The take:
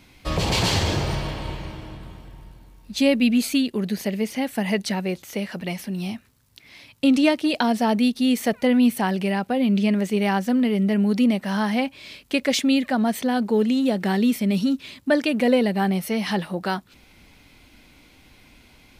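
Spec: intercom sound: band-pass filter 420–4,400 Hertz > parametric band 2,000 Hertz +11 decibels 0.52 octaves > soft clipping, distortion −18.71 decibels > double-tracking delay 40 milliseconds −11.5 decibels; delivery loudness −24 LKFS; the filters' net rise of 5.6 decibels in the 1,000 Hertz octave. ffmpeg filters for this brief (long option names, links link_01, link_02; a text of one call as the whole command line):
ffmpeg -i in.wav -filter_complex "[0:a]highpass=420,lowpass=4400,equalizer=frequency=1000:width_type=o:gain=7,equalizer=frequency=2000:width_type=o:width=0.52:gain=11,asoftclip=threshold=-10dB,asplit=2[link_01][link_02];[link_02]adelay=40,volume=-11.5dB[link_03];[link_01][link_03]amix=inputs=2:normalize=0,volume=-0.5dB" out.wav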